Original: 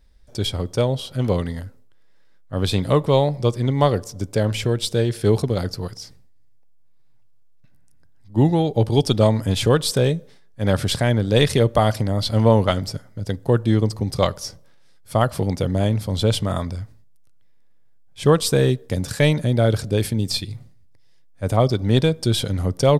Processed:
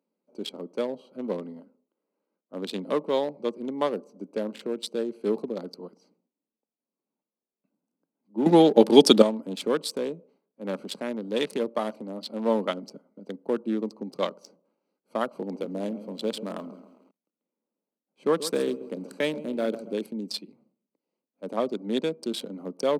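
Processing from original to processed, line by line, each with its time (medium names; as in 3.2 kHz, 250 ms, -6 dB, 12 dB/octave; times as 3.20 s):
8.46–9.22 s: gain +12 dB
9.91–12.48 s: partial rectifier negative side -3 dB
15.33–19.93 s: bit-crushed delay 135 ms, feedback 55%, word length 6-bit, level -12.5 dB
whole clip: local Wiener filter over 25 samples; steep high-pass 200 Hz 48 dB/octave; peaking EQ 730 Hz -5.5 dB 0.21 oct; trim -6.5 dB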